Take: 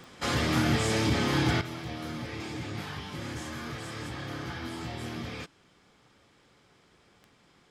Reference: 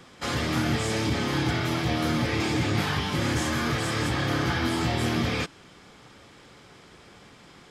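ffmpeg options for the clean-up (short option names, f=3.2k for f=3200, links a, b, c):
-af "adeclick=t=4,asetnsamples=n=441:p=0,asendcmd='1.61 volume volume 11.5dB',volume=0dB"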